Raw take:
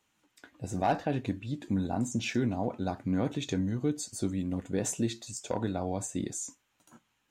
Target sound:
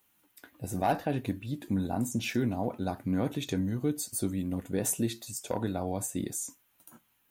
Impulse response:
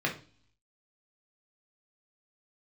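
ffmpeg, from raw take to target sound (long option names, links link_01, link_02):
-af "aexciter=amount=9.2:drive=3:freq=9800"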